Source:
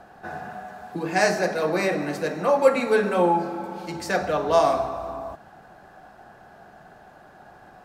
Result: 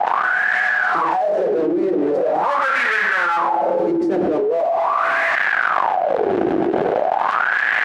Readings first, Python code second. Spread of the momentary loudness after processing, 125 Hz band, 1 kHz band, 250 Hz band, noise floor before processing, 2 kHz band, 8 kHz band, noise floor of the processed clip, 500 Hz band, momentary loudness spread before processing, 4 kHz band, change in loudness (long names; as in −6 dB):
2 LU, −2.0 dB, +9.0 dB, +7.0 dB, −50 dBFS, +14.0 dB, can't be measured, −20 dBFS, +4.5 dB, 17 LU, +3.5 dB, +5.5 dB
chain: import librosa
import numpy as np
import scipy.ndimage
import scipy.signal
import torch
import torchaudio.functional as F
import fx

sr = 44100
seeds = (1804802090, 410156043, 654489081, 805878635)

y = fx.fuzz(x, sr, gain_db=42.0, gate_db=-47.0)
y = fx.filter_lfo_bandpass(y, sr, shape='sine', hz=0.42, low_hz=330.0, high_hz=1800.0, q=7.8)
y = fx.env_flatten(y, sr, amount_pct=100)
y = F.gain(torch.from_numpy(y), -1.5).numpy()